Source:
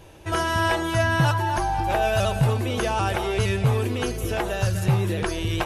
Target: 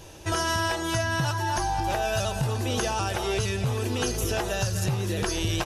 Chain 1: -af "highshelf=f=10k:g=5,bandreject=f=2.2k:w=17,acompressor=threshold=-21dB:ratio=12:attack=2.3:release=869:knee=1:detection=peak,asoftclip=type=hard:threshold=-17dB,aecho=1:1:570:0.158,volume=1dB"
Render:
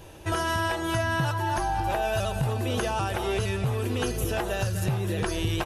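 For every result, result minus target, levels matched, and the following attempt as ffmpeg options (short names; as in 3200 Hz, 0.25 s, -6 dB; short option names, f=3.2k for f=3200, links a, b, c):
echo 0.409 s early; 8000 Hz band -5.5 dB
-af "highshelf=f=10k:g=5,bandreject=f=2.2k:w=17,acompressor=threshold=-21dB:ratio=12:attack=2.3:release=869:knee=1:detection=peak,asoftclip=type=hard:threshold=-17dB,aecho=1:1:979:0.158,volume=1dB"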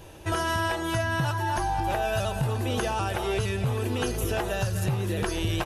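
8000 Hz band -5.5 dB
-af "highshelf=f=10k:g=5,bandreject=f=2.2k:w=17,acompressor=threshold=-21dB:ratio=12:attack=2.3:release=869:knee=1:detection=peak,equalizer=f=5.7k:t=o:w=0.99:g=9,asoftclip=type=hard:threshold=-17dB,aecho=1:1:979:0.158,volume=1dB"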